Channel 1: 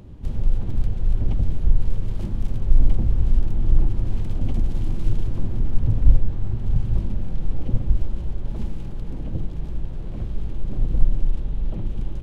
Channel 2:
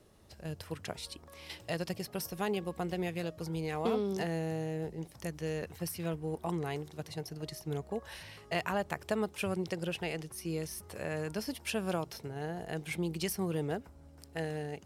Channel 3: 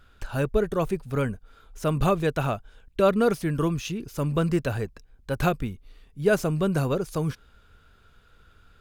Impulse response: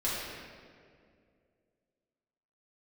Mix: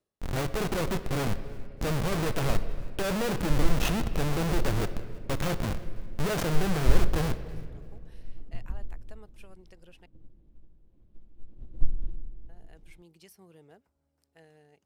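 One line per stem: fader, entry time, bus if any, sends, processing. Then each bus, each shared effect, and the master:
−11.5 dB, 0.80 s, send −7.5 dB, no echo send, parametric band 310 Hz +6 dB; expander for the loud parts 2.5 to 1, over −24 dBFS
−18.5 dB, 0.00 s, muted 0:10.06–0:12.49, no send, no echo send, low-shelf EQ 240 Hz −6 dB; automatic ducking −15 dB, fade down 0.30 s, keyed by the third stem
−2.5 dB, 0.00 s, send −17.5 dB, echo send −23.5 dB, comparator with hysteresis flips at −33.5 dBFS; bit reduction 6 bits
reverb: on, RT60 2.2 s, pre-delay 4 ms
echo: repeating echo 330 ms, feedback 26%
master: no processing

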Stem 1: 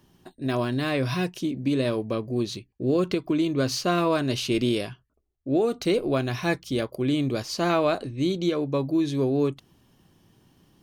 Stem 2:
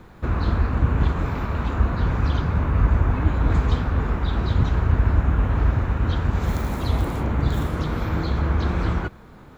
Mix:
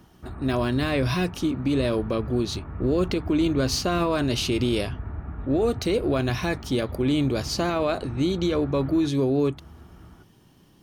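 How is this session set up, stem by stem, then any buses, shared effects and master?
+3.0 dB, 0.00 s, no send, no echo send, brickwall limiter −18.5 dBFS, peak gain reduction 7.5 dB
−7.5 dB, 0.00 s, no send, echo send −16.5 dB, low-pass filter 2,000 Hz 12 dB per octave; notch comb filter 520 Hz; automatic ducking −6 dB, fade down 0.30 s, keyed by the first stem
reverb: not used
echo: single-tap delay 1,155 ms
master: no processing

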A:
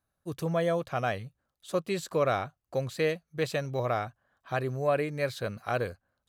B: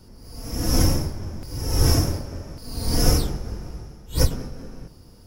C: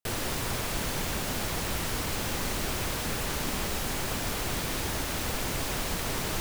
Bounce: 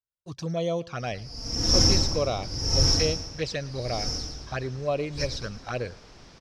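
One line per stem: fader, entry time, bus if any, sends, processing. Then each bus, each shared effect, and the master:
+1.0 dB, 0.00 s, no send, echo send −23.5 dB, noise gate with hold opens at −47 dBFS; flanger swept by the level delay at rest 2.1 ms, full sweep at −23.5 dBFS
0:02.75 −4.5 dB → 0:03.25 −16.5 dB, 1.00 s, no send, echo send −5.5 dB, no processing
−18.0 dB, 1.70 s, no send, no echo send, high-shelf EQ 2,700 Hz −10.5 dB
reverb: not used
echo: repeating echo 112 ms, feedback 45%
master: low-pass with resonance 5,400 Hz, resonance Q 4.3

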